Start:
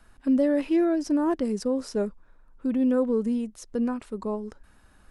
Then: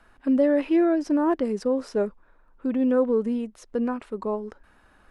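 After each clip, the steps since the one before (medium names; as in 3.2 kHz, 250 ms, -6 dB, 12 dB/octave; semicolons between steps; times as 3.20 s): tone controls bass -8 dB, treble -11 dB; trim +4 dB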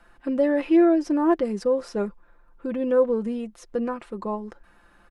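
comb 5.8 ms, depth 51%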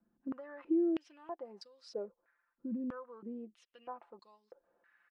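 compression 6:1, threshold -23 dBFS, peak gain reduction 9.5 dB; step-sequenced band-pass 3.1 Hz 220–4500 Hz; trim -4.5 dB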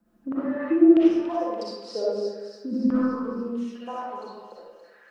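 feedback echo behind a high-pass 286 ms, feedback 57%, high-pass 4.1 kHz, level -4.5 dB; reverberation RT60 1.3 s, pre-delay 20 ms, DRR -8 dB; trim +7.5 dB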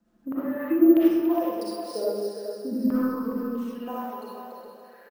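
sample-and-hold 3×; on a send: feedback delay 414 ms, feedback 24%, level -8 dB; on the sum: trim -1.5 dB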